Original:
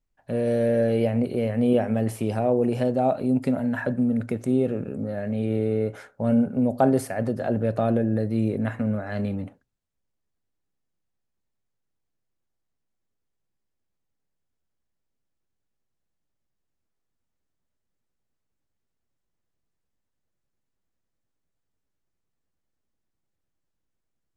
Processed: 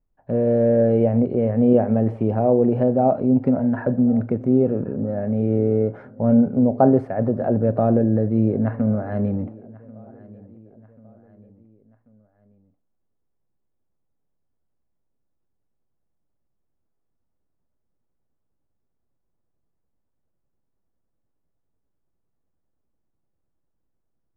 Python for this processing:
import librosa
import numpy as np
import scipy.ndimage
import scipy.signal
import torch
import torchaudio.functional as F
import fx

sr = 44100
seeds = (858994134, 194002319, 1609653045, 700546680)

p1 = scipy.signal.sosfilt(scipy.signal.butter(2, 1000.0, 'lowpass', fs=sr, output='sos'), x)
p2 = p1 + fx.echo_feedback(p1, sr, ms=1088, feedback_pct=47, wet_db=-22.5, dry=0)
y = p2 * librosa.db_to_amplitude(5.0)